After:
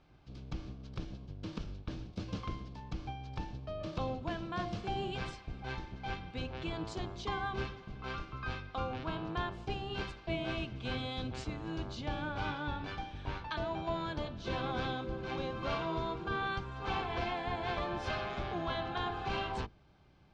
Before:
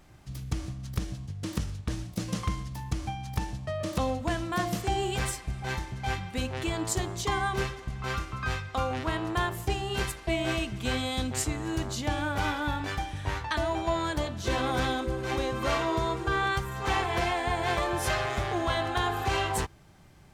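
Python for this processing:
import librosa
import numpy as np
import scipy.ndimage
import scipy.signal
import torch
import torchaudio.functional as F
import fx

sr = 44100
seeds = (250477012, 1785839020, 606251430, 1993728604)

y = fx.octave_divider(x, sr, octaves=1, level_db=1.0)
y = scipy.signal.sosfilt(scipy.signal.butter(4, 4700.0, 'lowpass', fs=sr, output='sos'), y)
y = fx.low_shelf(y, sr, hz=140.0, db=-6.0)
y = fx.notch(y, sr, hz=1900.0, q=6.5)
y = y * librosa.db_to_amplitude(-7.5)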